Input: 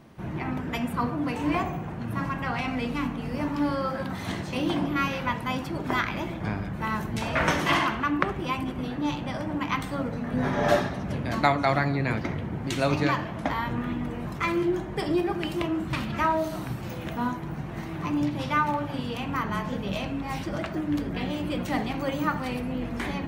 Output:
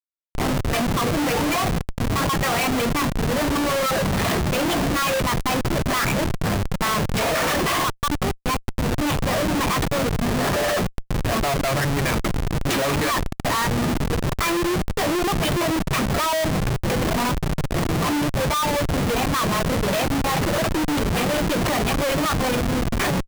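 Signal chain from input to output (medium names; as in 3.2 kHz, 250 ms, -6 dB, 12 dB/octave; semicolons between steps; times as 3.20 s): high-pass 290 Hz 6 dB/octave; reverb removal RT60 1.7 s; comb 1.7 ms, depth 35%; level rider gain up to 13 dB; Chebyshev shaper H 8 -37 dB, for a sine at -0.5 dBFS; Schmitt trigger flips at -26 dBFS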